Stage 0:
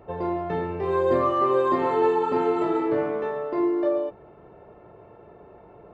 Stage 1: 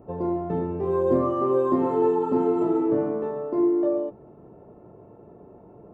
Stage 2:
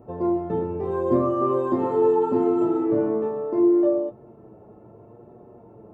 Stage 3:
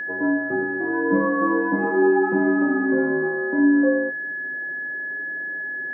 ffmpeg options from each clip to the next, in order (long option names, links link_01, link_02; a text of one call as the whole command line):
ffmpeg -i in.wav -af "equalizer=frequency=125:width_type=o:width=1:gain=4,equalizer=frequency=250:width_type=o:width=1:gain=9,equalizer=frequency=2000:width_type=o:width=1:gain=-10,equalizer=frequency=4000:width_type=o:width=1:gain=-11,volume=-2.5dB" out.wav
ffmpeg -i in.wav -af "flanger=delay=8.3:depth=1:regen=42:speed=0.75:shape=sinusoidal,volume=4.5dB" out.wav
ffmpeg -i in.wav -af "highpass=frequency=270:width_type=q:width=0.5412,highpass=frequency=270:width_type=q:width=1.307,lowpass=frequency=2300:width_type=q:width=0.5176,lowpass=frequency=2300:width_type=q:width=0.7071,lowpass=frequency=2300:width_type=q:width=1.932,afreqshift=-61,aeval=exprs='val(0)+0.0398*sin(2*PI*1700*n/s)':channel_layout=same,volume=1.5dB" out.wav